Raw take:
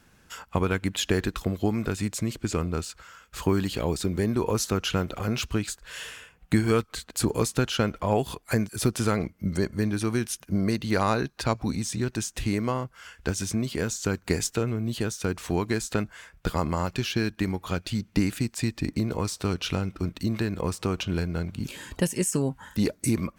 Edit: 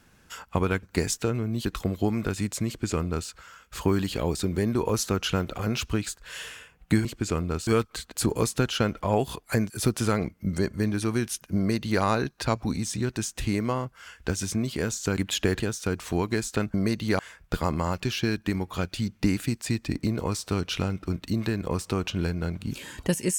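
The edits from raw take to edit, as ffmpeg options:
-filter_complex "[0:a]asplit=9[a][b][c][d][e][f][g][h][i];[a]atrim=end=0.832[j];[b]atrim=start=14.158:end=14.982[k];[c]atrim=start=1.258:end=6.662[l];[d]atrim=start=2.278:end=2.902[m];[e]atrim=start=6.658:end=14.162[n];[f]atrim=start=0.828:end=1.262[o];[g]atrim=start=14.978:end=16.122[p];[h]atrim=start=10.558:end=11.012[q];[i]atrim=start=16.118[r];[j][k]acrossfade=d=0.004:c1=hsin:c2=hsin[s];[s][l]acrossfade=d=0.004:c1=hsin:c2=hsin[t];[t][m]acrossfade=d=0.004:c1=hsin:c2=hsin[u];[u][n]acrossfade=d=0.004:c1=hsin:c2=hsin[v];[v][o]acrossfade=d=0.004:c1=hsin:c2=hsin[w];[w][p]acrossfade=d=0.004:c1=hsin:c2=hsin[x];[x][q]acrossfade=d=0.004:c1=hsin:c2=hsin[y];[y][r]acrossfade=d=0.004:c1=hsin:c2=hsin"

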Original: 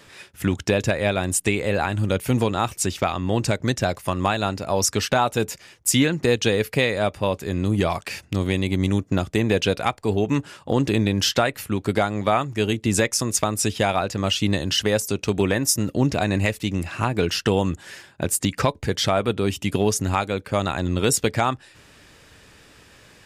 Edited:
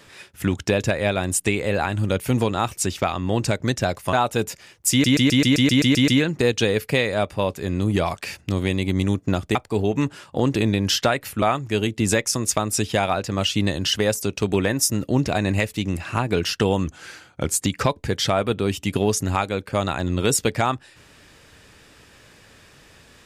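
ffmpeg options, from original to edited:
-filter_complex "[0:a]asplit=15[a][b][c][d][e][f][g][h][i][j][k][l][m][n][o];[a]atrim=end=4.132[p];[b]atrim=start=5.138:end=6.052[q];[c]atrim=start=5.918:end=6.052[r];[d]atrim=start=5.918:end=6.052[s];[e]atrim=start=5.918:end=6.052[t];[f]atrim=start=5.918:end=6.052[u];[g]atrim=start=5.918:end=6.052[v];[h]atrim=start=5.918:end=6.052[w];[i]atrim=start=5.918:end=6.052[x];[j]atrim=start=5.918:end=6.052[y];[k]atrim=start=5.918:end=9.392[z];[l]atrim=start=9.878:end=11.752[aa];[m]atrim=start=12.278:end=17.734[ab];[n]atrim=start=17.73:end=18.37,asetpts=PTS-STARTPTS,asetrate=39690,aresample=44100[ac];[o]atrim=start=18.366[ad];[p][q]acrossfade=d=0.004:c1=hsin:c2=hsin[ae];[ae][r]acrossfade=d=0.004:c1=hsin:c2=hsin[af];[af][s]acrossfade=d=0.004:c1=hsin:c2=hsin[ag];[ag][t]acrossfade=d=0.004:c1=hsin:c2=hsin[ah];[ah][u]acrossfade=d=0.004:c1=hsin:c2=hsin[ai];[ai][v]acrossfade=d=0.004:c1=hsin:c2=hsin[aj];[aj][w]acrossfade=d=0.004:c1=hsin:c2=hsin[ak];[ak][x]acrossfade=d=0.004:c1=hsin:c2=hsin[al];[al][y]acrossfade=d=0.004:c1=hsin:c2=hsin[am];[am][z]acrossfade=d=0.004:c1=hsin:c2=hsin[an];[an][aa]acrossfade=d=0.004:c1=hsin:c2=hsin[ao];[ao][ab]acrossfade=d=0.004:c1=hsin:c2=hsin[ap];[ap][ac]acrossfade=d=0.004:c1=hsin:c2=hsin[aq];[aq][ad]acrossfade=d=0.004:c1=hsin:c2=hsin"

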